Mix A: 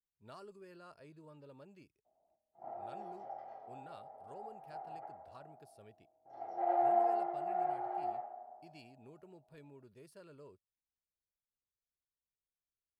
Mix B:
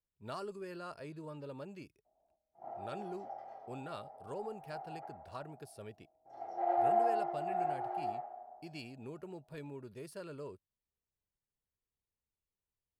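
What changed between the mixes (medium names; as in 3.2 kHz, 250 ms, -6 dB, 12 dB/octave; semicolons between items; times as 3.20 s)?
speech +10.0 dB; background: remove distance through air 90 m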